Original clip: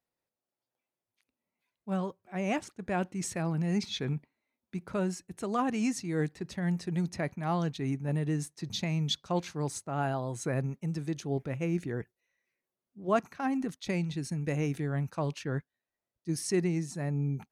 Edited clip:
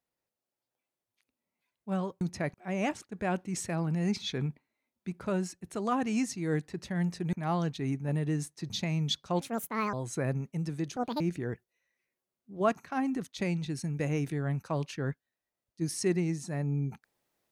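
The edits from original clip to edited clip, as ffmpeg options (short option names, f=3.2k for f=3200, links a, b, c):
-filter_complex "[0:a]asplit=8[a][b][c][d][e][f][g][h];[a]atrim=end=2.212[i];[b]atrim=start=6.998:end=7.332[j];[c]atrim=start=2.208:end=7.002[k];[d]atrim=start=7.328:end=9.414[l];[e]atrim=start=9.41:end=10.22,asetpts=PTS-STARTPTS,asetrate=68355,aresample=44100[m];[f]atrim=start=10.216:end=11.254[n];[g]atrim=start=11.25:end=11.68,asetpts=PTS-STARTPTS,asetrate=78498,aresample=44100,atrim=end_sample=10653,asetpts=PTS-STARTPTS[o];[h]atrim=start=11.676[p];[i][j]acrossfade=d=0.004:c1=hsin:c2=hsin[q];[q][k]acrossfade=d=0.004:c1=hsin:c2=hsin[r];[r][l]acrossfade=d=0.004:c1=hsin:c2=hsin[s];[s][m]acrossfade=d=0.004:c1=hsin:c2=hsin[t];[t][n]acrossfade=d=0.004:c1=hsin:c2=hsin[u];[u][o]acrossfade=d=0.004:c1=hsin:c2=hsin[v];[v][p]acrossfade=d=0.004:c1=hsin:c2=hsin"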